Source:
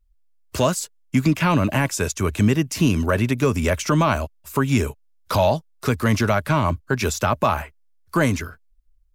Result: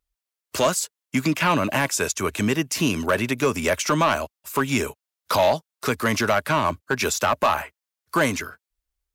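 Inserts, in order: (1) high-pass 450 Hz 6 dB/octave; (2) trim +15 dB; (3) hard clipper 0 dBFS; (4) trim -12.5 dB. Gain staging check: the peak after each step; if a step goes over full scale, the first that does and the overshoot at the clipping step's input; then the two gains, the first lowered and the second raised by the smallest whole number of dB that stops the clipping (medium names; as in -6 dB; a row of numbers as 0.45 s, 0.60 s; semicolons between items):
-8.0 dBFS, +7.0 dBFS, 0.0 dBFS, -12.5 dBFS; step 2, 7.0 dB; step 2 +8 dB, step 4 -5.5 dB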